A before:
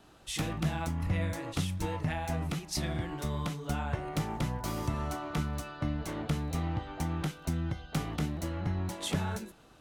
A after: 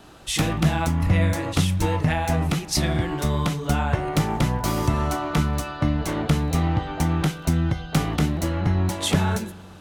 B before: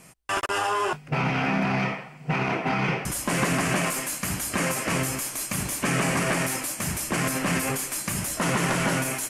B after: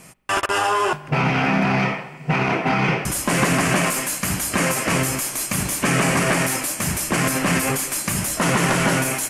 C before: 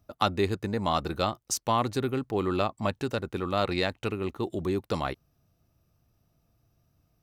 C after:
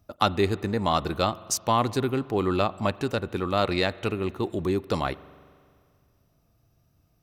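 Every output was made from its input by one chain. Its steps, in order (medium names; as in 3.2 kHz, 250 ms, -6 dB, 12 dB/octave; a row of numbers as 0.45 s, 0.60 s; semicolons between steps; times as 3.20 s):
spring tank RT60 2.1 s, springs 43 ms, chirp 45 ms, DRR 19 dB; peak normalisation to -6 dBFS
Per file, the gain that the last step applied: +11.0 dB, +5.5 dB, +3.0 dB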